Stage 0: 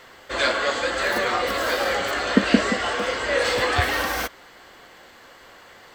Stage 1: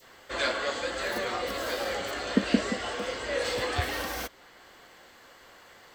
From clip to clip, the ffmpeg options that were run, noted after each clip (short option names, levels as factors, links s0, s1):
-filter_complex "[0:a]adynamicequalizer=threshold=0.0158:dfrequency=1400:dqfactor=0.72:tfrequency=1400:tqfactor=0.72:attack=5:release=100:ratio=0.375:range=2.5:mode=cutabove:tftype=bell,acrossover=split=4700[s0][s1];[s1]acompressor=mode=upward:threshold=0.00224:ratio=2.5[s2];[s0][s2]amix=inputs=2:normalize=0,volume=0.501"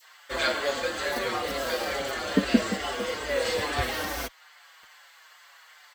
-filter_complex "[0:a]acrossover=split=810[s0][s1];[s0]acrusher=bits=7:mix=0:aa=0.000001[s2];[s2][s1]amix=inputs=2:normalize=0,asplit=2[s3][s4];[s4]adelay=5.8,afreqshift=-2.3[s5];[s3][s5]amix=inputs=2:normalize=1,volume=1.78"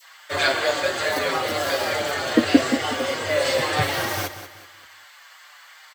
-filter_complex "[0:a]afreqshift=40,asplit=2[s0][s1];[s1]aecho=0:1:189|378|567|756:0.251|0.0904|0.0326|0.0117[s2];[s0][s2]amix=inputs=2:normalize=0,volume=1.88"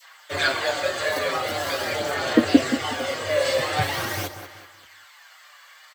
-af "aphaser=in_gain=1:out_gain=1:delay=1.8:decay=0.3:speed=0.44:type=sinusoidal,volume=0.75"